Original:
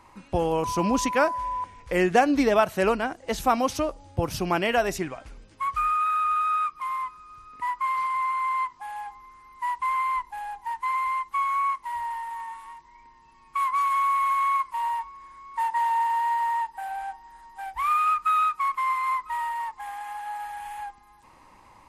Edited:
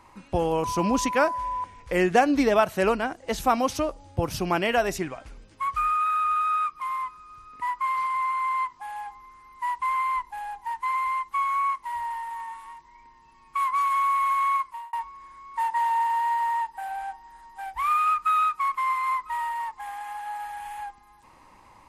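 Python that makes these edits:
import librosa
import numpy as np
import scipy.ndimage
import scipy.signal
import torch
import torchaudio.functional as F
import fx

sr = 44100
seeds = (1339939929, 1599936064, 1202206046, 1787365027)

y = fx.edit(x, sr, fx.fade_out_span(start_s=14.55, length_s=0.38), tone=tone)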